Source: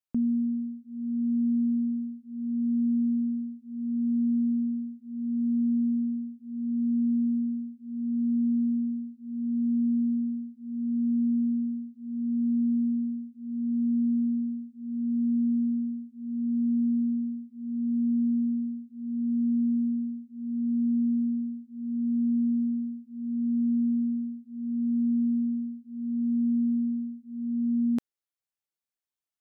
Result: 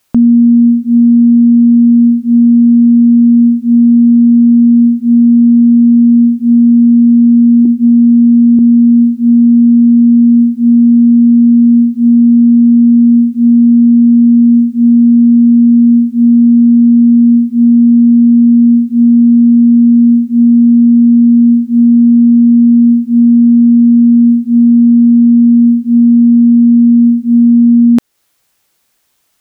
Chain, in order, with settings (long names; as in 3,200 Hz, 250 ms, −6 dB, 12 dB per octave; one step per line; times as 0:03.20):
0:07.65–0:08.59: parametric band 300 Hz +14.5 dB 0.48 octaves
downward compressor 2 to 1, threshold −38 dBFS, peak gain reduction 10.5 dB
boost into a limiter +33.5 dB
level −1 dB